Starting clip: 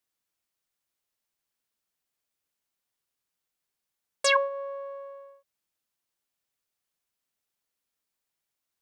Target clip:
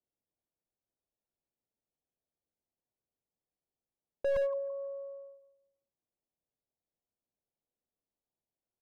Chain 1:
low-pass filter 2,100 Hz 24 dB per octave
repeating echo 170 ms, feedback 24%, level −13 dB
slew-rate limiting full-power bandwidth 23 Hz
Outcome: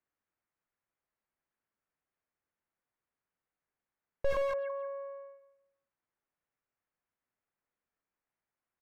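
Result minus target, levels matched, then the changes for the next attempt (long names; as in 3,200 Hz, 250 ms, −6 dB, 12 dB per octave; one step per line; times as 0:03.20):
1,000 Hz band +12.0 dB
change: low-pass filter 740 Hz 24 dB per octave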